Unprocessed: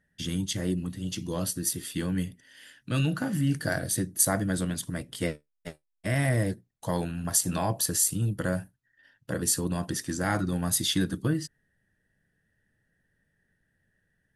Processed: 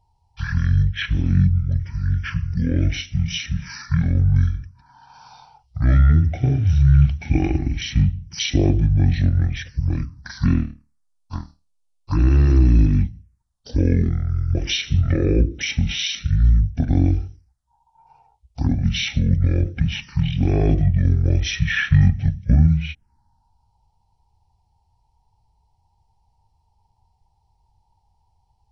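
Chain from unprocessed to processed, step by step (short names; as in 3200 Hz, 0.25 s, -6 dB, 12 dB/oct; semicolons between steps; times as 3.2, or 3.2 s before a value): envelope phaser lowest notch 530 Hz, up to 1900 Hz, full sweep at -27.5 dBFS; speed mistake 15 ips tape played at 7.5 ips; low shelf 380 Hz +6.5 dB; gain +6.5 dB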